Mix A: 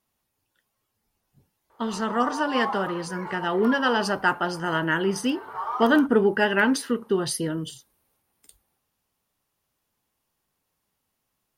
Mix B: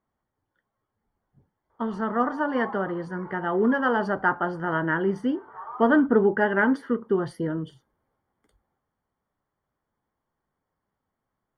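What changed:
background -8.0 dB; master: add Savitzky-Golay filter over 41 samples

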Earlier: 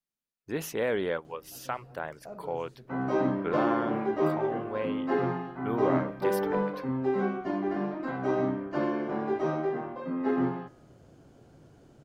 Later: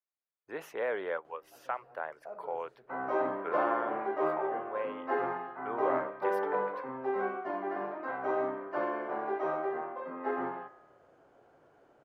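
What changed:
background: send +10.0 dB; master: add three-band isolator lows -22 dB, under 450 Hz, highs -17 dB, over 2.2 kHz

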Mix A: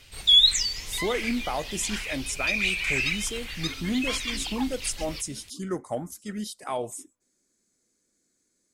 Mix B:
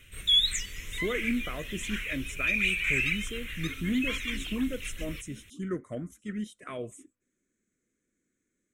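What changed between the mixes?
speech: add distance through air 75 m; master: add static phaser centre 2 kHz, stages 4

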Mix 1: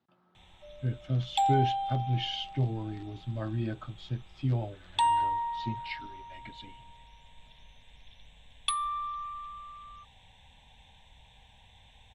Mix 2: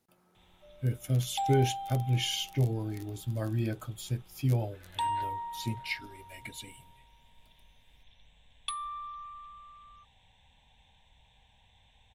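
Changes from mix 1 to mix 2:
speech: remove cabinet simulation 100–3800 Hz, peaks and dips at 460 Hz -7 dB, 1.2 kHz +3 dB, 2.3 kHz -7 dB; background -6.0 dB

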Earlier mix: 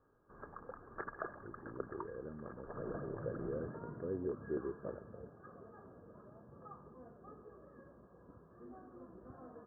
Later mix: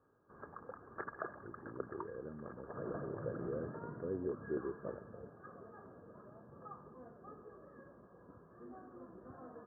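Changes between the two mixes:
second sound: remove distance through air 450 m; master: add high-pass 73 Hz

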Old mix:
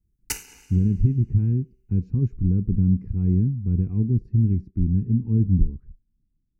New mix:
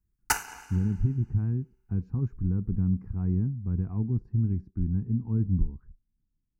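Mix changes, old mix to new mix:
speech -6.5 dB; master: add high-order bell 1 kHz +15.5 dB

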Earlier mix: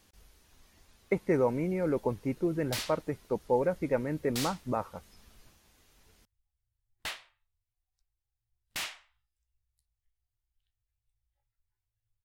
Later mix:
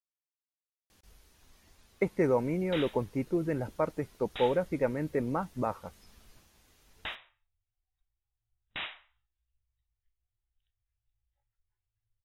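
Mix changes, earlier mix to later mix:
speech: entry +0.90 s; background: add brick-wall FIR low-pass 3.9 kHz

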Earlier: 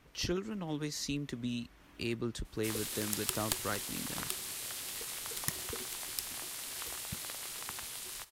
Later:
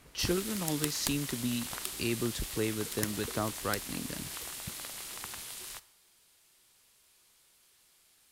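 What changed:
speech +3.5 dB; background: entry -2.45 s

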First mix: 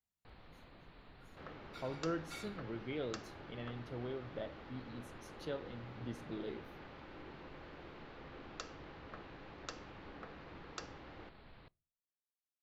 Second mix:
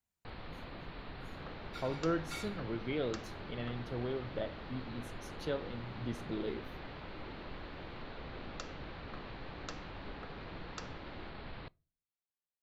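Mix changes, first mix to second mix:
speech +5.0 dB; first sound +12.0 dB

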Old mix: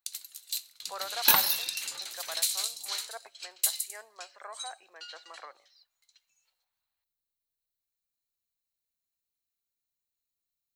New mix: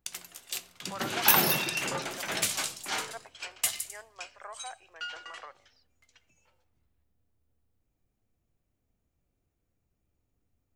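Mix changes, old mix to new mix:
first sound: remove pre-emphasis filter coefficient 0.97; master: add peaking EQ 4.1 kHz -15 dB 0.22 oct

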